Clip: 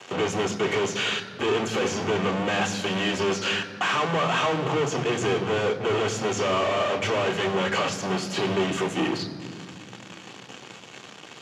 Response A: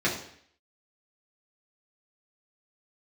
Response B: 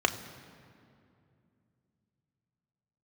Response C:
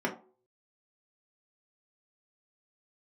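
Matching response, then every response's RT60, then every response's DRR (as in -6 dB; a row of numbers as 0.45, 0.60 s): B; 0.60 s, 2.5 s, not exponential; -6.5, 5.5, -2.5 dB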